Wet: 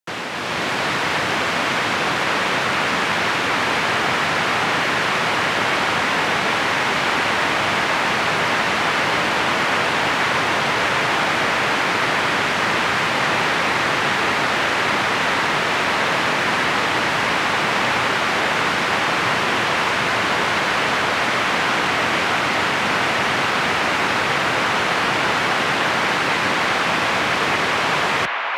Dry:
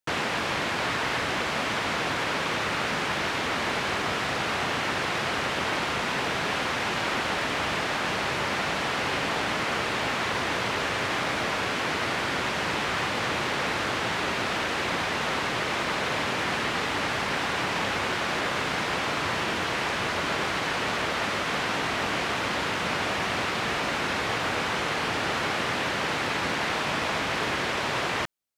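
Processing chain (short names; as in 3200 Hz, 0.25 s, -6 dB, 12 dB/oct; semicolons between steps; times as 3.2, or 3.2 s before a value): frequency shift +26 Hz; AGC gain up to 6.5 dB; band-limited delay 0.604 s, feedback 82%, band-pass 1400 Hz, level -5 dB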